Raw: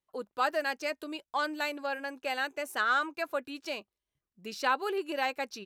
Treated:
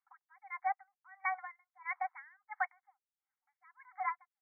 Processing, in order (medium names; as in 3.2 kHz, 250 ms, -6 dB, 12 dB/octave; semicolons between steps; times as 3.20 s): tape speed +28%; brick-wall FIR band-pass 730–2300 Hz; logarithmic tremolo 1.5 Hz, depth 39 dB; trim +4 dB